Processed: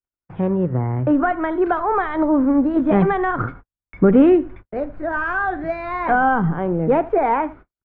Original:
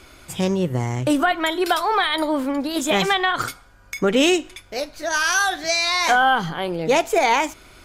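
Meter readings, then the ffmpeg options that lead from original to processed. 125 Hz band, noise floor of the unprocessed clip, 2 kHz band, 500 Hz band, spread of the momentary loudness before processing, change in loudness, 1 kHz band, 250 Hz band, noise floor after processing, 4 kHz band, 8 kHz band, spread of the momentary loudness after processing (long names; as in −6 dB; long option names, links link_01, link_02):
+5.0 dB, −49 dBFS, −4.5 dB, +2.5 dB, 10 LU, +1.0 dB, 0.0 dB, +6.0 dB, below −85 dBFS, below −25 dB, below −40 dB, 11 LU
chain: -filter_complex "[0:a]lowshelf=frequency=200:gain=2.5,aecho=1:1:78:0.0944,aresample=16000,acrusher=bits=7:mix=0:aa=0.000001,aresample=44100,asoftclip=type=hard:threshold=-11dB,agate=range=-56dB:threshold=-38dB:ratio=16:detection=peak,acrossover=split=340[link_01][link_02];[link_01]dynaudnorm=framelen=450:gausssize=7:maxgain=9.5dB[link_03];[link_03][link_02]amix=inputs=2:normalize=0,lowpass=frequency=1600:width=0.5412,lowpass=frequency=1600:width=1.3066"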